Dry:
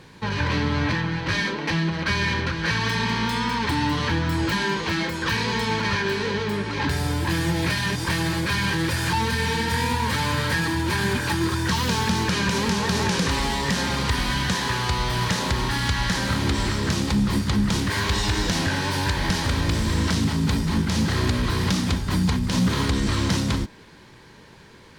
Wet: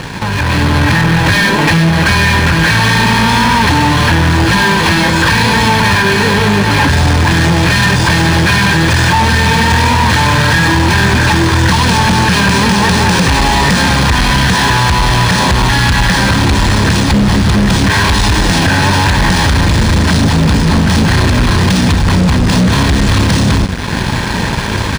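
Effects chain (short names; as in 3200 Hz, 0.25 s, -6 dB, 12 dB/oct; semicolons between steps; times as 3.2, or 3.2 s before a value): compressor 8:1, threshold -37 dBFS, peak gain reduction 19.5 dB; comb 1.2 ms, depth 35%; on a send: diffused feedback echo 1.67 s, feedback 59%, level -13.5 dB; on the sum: fuzz box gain 41 dB, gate -50 dBFS; AGC gain up to 7.5 dB; decimation joined by straight lines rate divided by 3×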